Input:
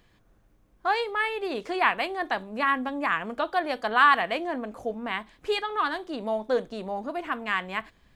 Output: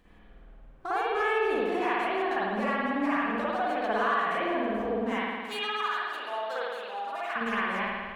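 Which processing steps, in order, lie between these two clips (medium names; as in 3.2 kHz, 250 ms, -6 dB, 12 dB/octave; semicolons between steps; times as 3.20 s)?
median filter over 9 samples; 5.14–7.36 s: high-pass 1.3 kHz 12 dB/octave; compression 5:1, threshold -34 dBFS, peak gain reduction 17.5 dB; flange 0.59 Hz, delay 3.8 ms, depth 1.5 ms, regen -41%; reverberation RT60 1.7 s, pre-delay 52 ms, DRR -9.5 dB; trim +2.5 dB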